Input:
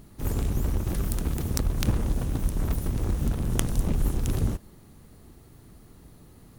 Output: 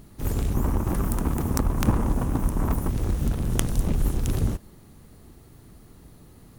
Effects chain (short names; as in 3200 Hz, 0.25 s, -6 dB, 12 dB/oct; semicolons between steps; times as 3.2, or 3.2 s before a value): 0.54–2.89 graphic EQ 250/1000/4000 Hz +5/+10/-7 dB; gain +1.5 dB